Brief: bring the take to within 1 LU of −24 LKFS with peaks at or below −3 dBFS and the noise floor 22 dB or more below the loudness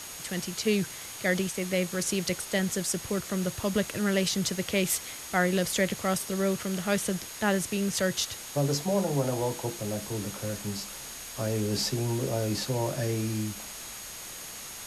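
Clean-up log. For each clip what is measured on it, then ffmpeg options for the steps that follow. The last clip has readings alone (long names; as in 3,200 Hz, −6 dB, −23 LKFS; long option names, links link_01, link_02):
interfering tone 6,600 Hz; level of the tone −46 dBFS; background noise floor −42 dBFS; target noise floor −52 dBFS; integrated loudness −29.5 LKFS; sample peak −12.0 dBFS; target loudness −24.0 LKFS
→ -af "bandreject=frequency=6600:width=30"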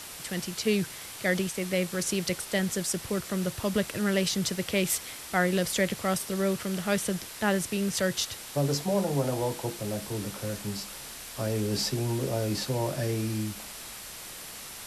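interfering tone none found; background noise floor −42 dBFS; target noise floor −52 dBFS
→ -af "afftdn=noise_reduction=10:noise_floor=-42"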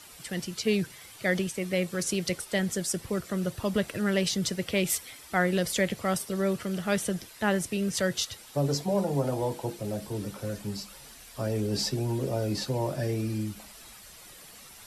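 background noise floor −50 dBFS; target noise floor −52 dBFS
→ -af "afftdn=noise_reduction=6:noise_floor=-50"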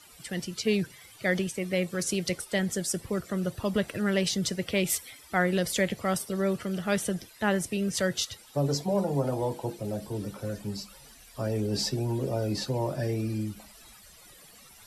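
background noise floor −53 dBFS; integrated loudness −30.0 LKFS; sample peak −12.0 dBFS; target loudness −24.0 LKFS
→ -af "volume=6dB"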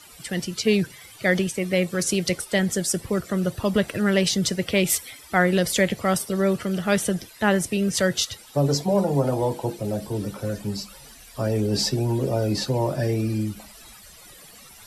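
integrated loudness −24.0 LKFS; sample peak −6.0 dBFS; background noise floor −47 dBFS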